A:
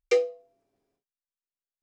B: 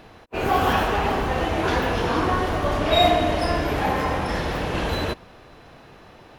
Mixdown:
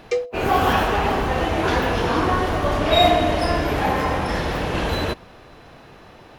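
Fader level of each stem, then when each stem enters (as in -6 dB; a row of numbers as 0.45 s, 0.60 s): 0.0 dB, +2.0 dB; 0.00 s, 0.00 s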